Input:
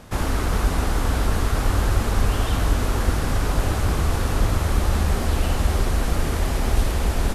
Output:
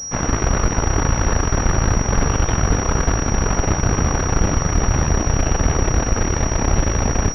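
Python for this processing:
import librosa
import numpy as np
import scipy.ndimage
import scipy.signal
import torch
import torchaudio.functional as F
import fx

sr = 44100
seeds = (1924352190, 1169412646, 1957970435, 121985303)

y = fx.cheby_harmonics(x, sr, harmonics=(6,), levels_db=(-9,), full_scale_db=-6.5)
y = fx.pwm(y, sr, carrier_hz=5700.0)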